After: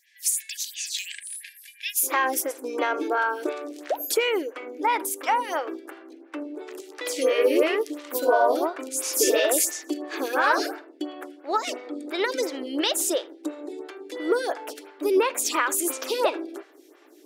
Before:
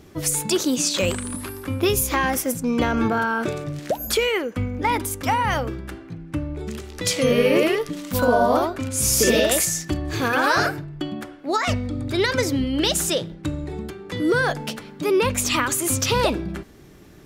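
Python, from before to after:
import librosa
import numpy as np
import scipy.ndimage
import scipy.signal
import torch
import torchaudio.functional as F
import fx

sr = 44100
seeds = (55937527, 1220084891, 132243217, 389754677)

y = fx.octave_divider(x, sr, octaves=2, level_db=1.0)
y = fx.brickwall_highpass(y, sr, low_hz=fx.steps((0.0, 1600.0), (2.02, 270.0)))
y = y + 10.0 ** (-24.0 / 20.0) * np.pad(y, (int(80 * sr / 1000.0), 0))[:len(y)]
y = fx.stagger_phaser(y, sr, hz=2.9)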